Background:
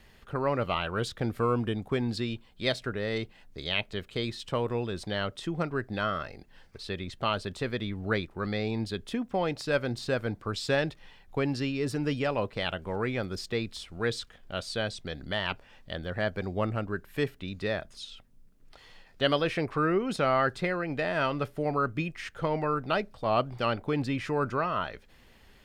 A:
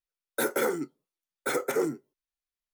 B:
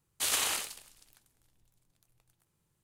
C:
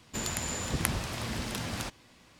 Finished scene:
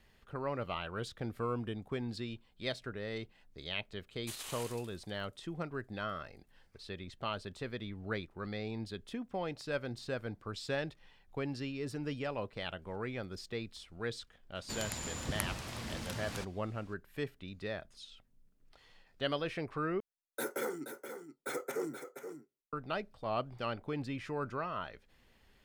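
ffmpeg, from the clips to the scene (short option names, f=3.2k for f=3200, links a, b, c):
-filter_complex "[0:a]volume=-9dB[a];[2:a]alimiter=limit=-23.5dB:level=0:latency=1:release=247[b];[1:a]aecho=1:1:476:0.355[c];[a]asplit=2[d][e];[d]atrim=end=20.004[f];[c]atrim=end=2.73,asetpts=PTS-STARTPTS,volume=-10dB[g];[e]atrim=start=22.726[h];[b]atrim=end=2.83,asetpts=PTS-STARTPTS,volume=-9.5dB,afade=t=in:d=0.004:c=hsin,afade=t=out:st=2.826:d=0.004:c=hsin,adelay=4070[i];[3:a]atrim=end=2.39,asetpts=PTS-STARTPTS,volume=-7dB,afade=t=in:d=0.004:c=hsin,afade=t=out:st=2.386:d=0.004:c=hsin,adelay=14550[j];[f][g]acrossfade=d=0.004:c1=hsin:c2=hsin[k];[k][h]acrossfade=d=0.004:c1=hsin:c2=hsin[l];[l][i][j]amix=inputs=3:normalize=0"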